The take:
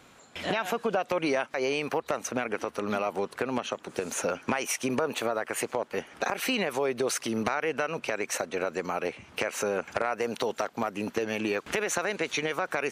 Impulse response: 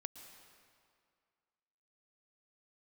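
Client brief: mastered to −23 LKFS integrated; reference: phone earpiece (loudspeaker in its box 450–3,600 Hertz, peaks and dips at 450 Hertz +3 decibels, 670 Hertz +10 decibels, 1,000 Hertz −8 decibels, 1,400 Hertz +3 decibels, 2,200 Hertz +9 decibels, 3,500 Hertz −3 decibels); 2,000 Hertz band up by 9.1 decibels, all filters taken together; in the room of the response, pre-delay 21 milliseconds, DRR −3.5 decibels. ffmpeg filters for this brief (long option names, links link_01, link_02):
-filter_complex "[0:a]equalizer=frequency=2000:width_type=o:gain=5.5,asplit=2[link_01][link_02];[1:a]atrim=start_sample=2205,adelay=21[link_03];[link_02][link_03]afir=irnorm=-1:irlink=0,volume=7dB[link_04];[link_01][link_04]amix=inputs=2:normalize=0,highpass=450,equalizer=frequency=450:width_type=q:width=4:gain=3,equalizer=frequency=670:width_type=q:width=4:gain=10,equalizer=frequency=1000:width_type=q:width=4:gain=-8,equalizer=frequency=1400:width_type=q:width=4:gain=3,equalizer=frequency=2200:width_type=q:width=4:gain=9,equalizer=frequency=3500:width_type=q:width=4:gain=-3,lowpass=frequency=3600:width=0.5412,lowpass=frequency=3600:width=1.3066,volume=-2.5dB"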